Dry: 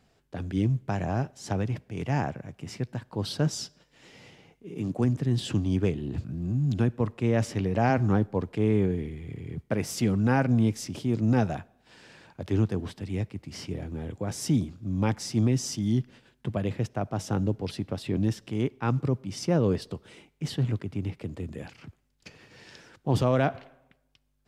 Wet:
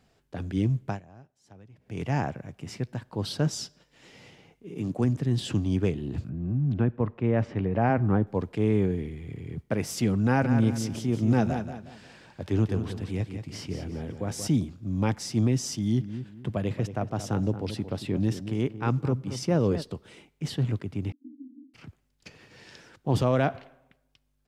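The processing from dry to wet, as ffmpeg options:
ffmpeg -i in.wav -filter_complex "[0:a]asettb=1/sr,asplit=3[link_01][link_02][link_03];[link_01]atrim=end=6.294[link_04];[link_02]atrim=start=6.29:end=8.27,asetpts=PTS-STARTPTS,afade=type=in:duration=0.004:curve=qsin,afade=type=out:start_time=1.976:duration=0.004:curve=qsin,lowpass=2100[link_05];[link_03]atrim=start=8.266[link_06];[link_04][link_05]acrossfade=duration=0.004:curve1=hsin:curve2=qsin[link_07];[link_07][link_06]acrossfade=duration=0.004:curve1=qsin:curve2=hsin,asettb=1/sr,asplit=3[link_08][link_09][link_10];[link_08]atrim=end=10.244[link_11];[link_09]atrim=start=10.24:end=14.48,asetpts=PTS-STARTPTS,afade=type=in:duration=0.004:curve=qsin,afade=type=out:start_time=4.236:duration=0.004:curve=qsin,aecho=1:1:181|362|543|724:0.376|0.128|0.0434|0.0148,atrim=end_sample=186984[link_12];[link_10]atrim=start=14.476[link_13];[link_11][link_12]acrossfade=duration=0.004:curve1=hsin:curve2=qsin[link_14];[link_14][link_13]acrossfade=duration=0.004:curve1=qsin:curve2=hsin,asplit=3[link_15][link_16][link_17];[link_15]afade=type=out:start_time=15.99:duration=0.02[link_18];[link_16]asplit=2[link_19][link_20];[link_20]adelay=227,lowpass=frequency=1400:poles=1,volume=-10.5dB,asplit=2[link_21][link_22];[link_22]adelay=227,lowpass=frequency=1400:poles=1,volume=0.31,asplit=2[link_23][link_24];[link_24]adelay=227,lowpass=frequency=1400:poles=1,volume=0.31[link_25];[link_19][link_21][link_23][link_25]amix=inputs=4:normalize=0,afade=type=in:start_time=15.99:duration=0.02,afade=type=out:start_time=19.81:duration=0.02[link_26];[link_17]afade=type=in:start_time=19.81:duration=0.02[link_27];[link_18][link_26][link_27]amix=inputs=3:normalize=0,asettb=1/sr,asplit=3[link_28][link_29][link_30];[link_28]atrim=end=21.124[link_31];[link_29]atrim=start=21.12:end=21.74,asetpts=PTS-STARTPTS,afade=type=in:duration=0.004:curve=qsin,afade=type=out:start_time=0.616:duration=0.004:curve=qsin,asuperpass=centerf=270:order=8:qfactor=3.9[link_32];[link_30]atrim=start=21.736[link_33];[link_31][link_32]acrossfade=duration=0.004:curve1=hsin:curve2=qsin[link_34];[link_34][link_33]acrossfade=duration=0.004:curve1=qsin:curve2=hsin,asplit=3[link_35][link_36][link_37];[link_35]atrim=end=1.01,asetpts=PTS-STARTPTS,afade=type=out:start_time=0.89:duration=0.12:silence=0.0749894[link_38];[link_36]atrim=start=1.01:end=1.78,asetpts=PTS-STARTPTS,volume=-22.5dB[link_39];[link_37]atrim=start=1.78,asetpts=PTS-STARTPTS,afade=type=in:duration=0.12:silence=0.0749894[link_40];[link_38][link_39][link_40]concat=n=3:v=0:a=1" out.wav

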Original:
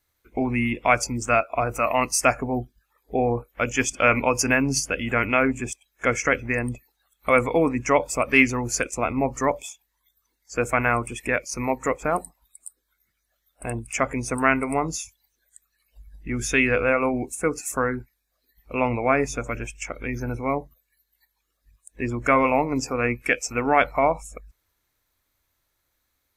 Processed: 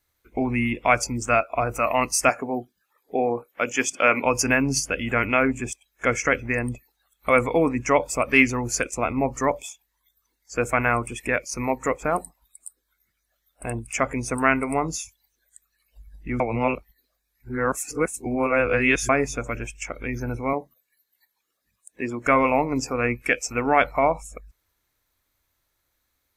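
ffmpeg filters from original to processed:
ffmpeg -i in.wav -filter_complex "[0:a]asettb=1/sr,asplit=3[link_01][link_02][link_03];[link_01]atrim=end=2.294[link_04];[link_02]atrim=start=2.29:end=4.25,asetpts=PTS-STARTPTS,afade=type=in:duration=0.004:curve=qsin,afade=type=out:start_time=1.956:duration=0.004:curve=qsin,highpass=230[link_05];[link_03]atrim=start=4.246[link_06];[link_04][link_05]acrossfade=duration=0.004:curve1=hsin:curve2=qsin[link_07];[link_07][link_06]acrossfade=duration=0.004:curve1=qsin:curve2=hsin,asettb=1/sr,asplit=3[link_08][link_09][link_10];[link_08]atrim=end=20.534[link_11];[link_09]atrim=start=20.53:end=22.27,asetpts=PTS-STARTPTS,afade=type=in:duration=0.004:curve=qsin,afade=type=out:start_time=1.736:duration=0.004:curve=qsin,highpass=190[link_12];[link_10]atrim=start=22.266[link_13];[link_11][link_12]acrossfade=duration=0.004:curve1=hsin:curve2=qsin[link_14];[link_14][link_13]acrossfade=duration=0.004:curve1=qsin:curve2=hsin,asplit=3[link_15][link_16][link_17];[link_15]atrim=end=16.402[link_18];[link_16]atrim=start=16.398:end=19.092,asetpts=PTS-STARTPTS,areverse[link_19];[link_17]atrim=start=19.088[link_20];[link_18][link_19]acrossfade=duration=0.004:curve1=hsin:curve2=hsin[link_21];[link_21][link_20]acrossfade=duration=0.004:curve1=hsin:curve2=hsin" out.wav

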